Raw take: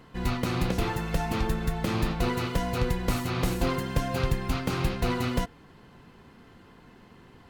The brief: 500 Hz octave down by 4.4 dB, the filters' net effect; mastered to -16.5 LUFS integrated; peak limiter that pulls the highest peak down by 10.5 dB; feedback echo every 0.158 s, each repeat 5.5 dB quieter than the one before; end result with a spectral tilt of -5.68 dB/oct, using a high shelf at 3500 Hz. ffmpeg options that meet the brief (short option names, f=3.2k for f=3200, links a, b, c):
-af "equalizer=f=500:t=o:g=-5.5,highshelf=f=3.5k:g=-8.5,alimiter=limit=-24dB:level=0:latency=1,aecho=1:1:158|316|474|632|790|948|1106:0.531|0.281|0.149|0.079|0.0419|0.0222|0.0118,volume=16.5dB"